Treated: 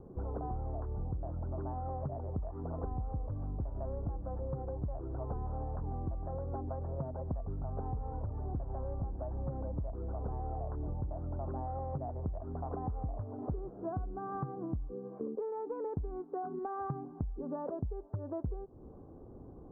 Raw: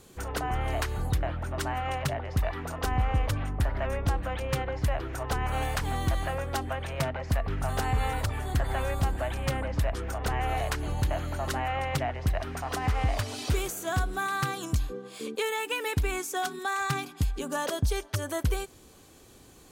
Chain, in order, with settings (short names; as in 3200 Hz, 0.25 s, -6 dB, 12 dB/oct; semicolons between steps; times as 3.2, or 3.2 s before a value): Bessel low-pass 600 Hz, order 8; compressor, threshold -41 dBFS, peak gain reduction 18 dB; gain +5.5 dB